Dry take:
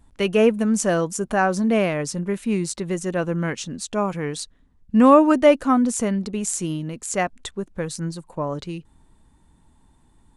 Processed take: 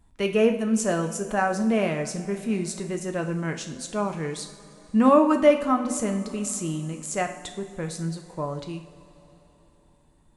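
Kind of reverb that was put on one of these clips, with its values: two-slope reverb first 0.55 s, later 3.8 s, from -16 dB, DRR 4.5 dB; gain -5 dB

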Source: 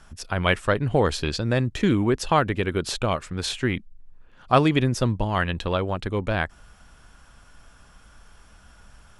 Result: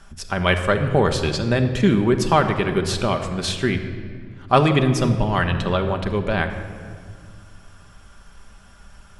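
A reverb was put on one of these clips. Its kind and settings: shoebox room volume 3500 m³, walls mixed, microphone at 1.2 m; gain +2 dB

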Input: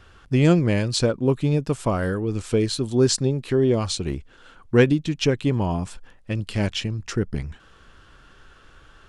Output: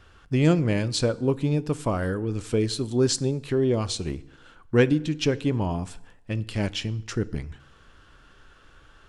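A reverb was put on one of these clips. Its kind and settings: FDN reverb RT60 0.85 s, low-frequency decay 1×, high-frequency decay 0.75×, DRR 16 dB; gain -3 dB

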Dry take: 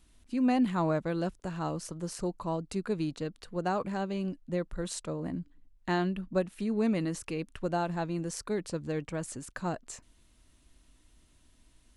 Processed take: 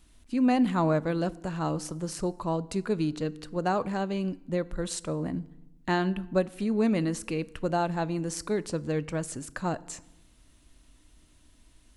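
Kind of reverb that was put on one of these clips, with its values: FDN reverb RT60 0.97 s, low-frequency decay 1.4×, high-frequency decay 0.7×, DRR 17.5 dB; gain +3.5 dB

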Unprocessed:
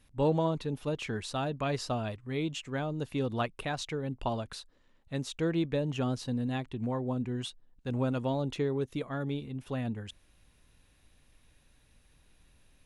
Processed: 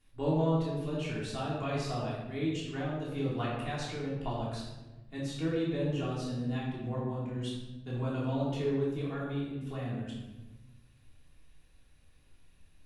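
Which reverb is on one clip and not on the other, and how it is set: shoebox room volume 560 m³, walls mixed, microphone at 3.3 m; gain -10 dB

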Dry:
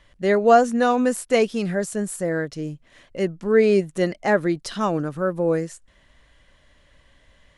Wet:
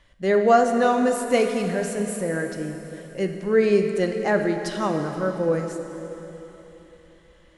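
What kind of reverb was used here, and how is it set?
plate-style reverb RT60 3.7 s, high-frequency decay 0.9×, DRR 4.5 dB; gain -2.5 dB

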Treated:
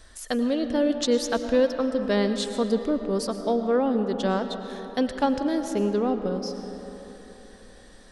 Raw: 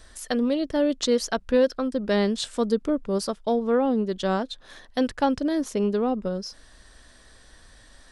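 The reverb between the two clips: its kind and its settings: digital reverb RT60 4 s, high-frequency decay 0.45×, pre-delay 70 ms, DRR 7.5 dB; gain -1 dB

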